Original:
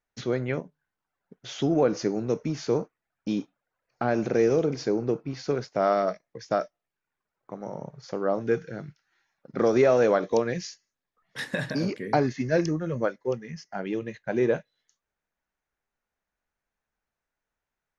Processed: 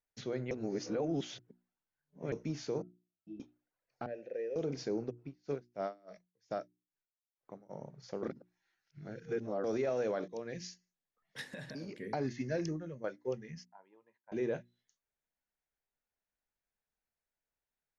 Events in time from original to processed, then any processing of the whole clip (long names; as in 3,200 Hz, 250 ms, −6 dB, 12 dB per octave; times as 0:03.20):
0:00.51–0:02.32: reverse
0:02.82–0:03.40: resonances in every octave E, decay 0.23 s
0:04.06–0:04.56: formant filter e
0:05.09–0:07.69: tremolo with a sine in dB 4 Hz → 1.7 Hz, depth 34 dB
0:08.23–0:09.64: reverse
0:10.28–0:10.68: fade in, from −21.5 dB
0:11.41–0:11.98: downward compressor 3 to 1, threshold −34 dBFS
0:12.63–0:13.04: fade out, to −13 dB
0:13.65–0:14.32: resonant band-pass 960 Hz, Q 10
whole clip: parametric band 1,200 Hz −4.5 dB 0.79 octaves; brickwall limiter −17.5 dBFS; mains-hum notches 60/120/180/240/300/360 Hz; level −8 dB